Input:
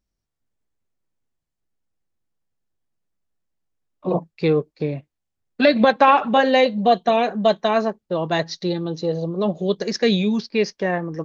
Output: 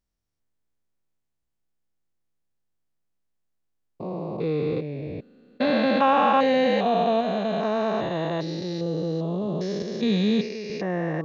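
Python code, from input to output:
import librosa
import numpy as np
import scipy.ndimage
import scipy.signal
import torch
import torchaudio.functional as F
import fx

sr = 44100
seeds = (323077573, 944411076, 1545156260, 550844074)

y = fx.spec_steps(x, sr, hold_ms=400)
y = fx.band_widen(y, sr, depth_pct=40, at=(9.82, 10.7))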